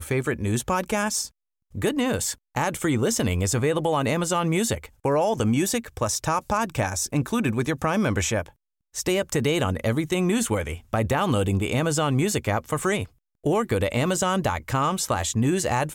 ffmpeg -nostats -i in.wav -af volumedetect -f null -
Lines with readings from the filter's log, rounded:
mean_volume: -24.4 dB
max_volume: -10.0 dB